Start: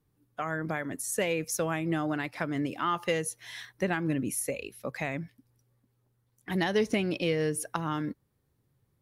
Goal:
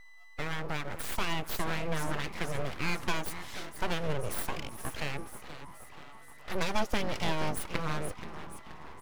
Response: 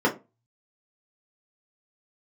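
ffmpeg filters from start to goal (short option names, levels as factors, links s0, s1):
-filter_complex "[0:a]aeval=exprs='val(0)+0.00398*sin(2*PI*1000*n/s)':c=same,asplit=7[s0][s1][s2][s3][s4][s5][s6];[s1]adelay=477,afreqshift=-140,volume=0.266[s7];[s2]adelay=954,afreqshift=-280,volume=0.146[s8];[s3]adelay=1431,afreqshift=-420,volume=0.0804[s9];[s4]adelay=1908,afreqshift=-560,volume=0.0442[s10];[s5]adelay=2385,afreqshift=-700,volume=0.0243[s11];[s6]adelay=2862,afreqshift=-840,volume=0.0133[s12];[s0][s7][s8][s9][s10][s11][s12]amix=inputs=7:normalize=0,aeval=exprs='abs(val(0))':c=same"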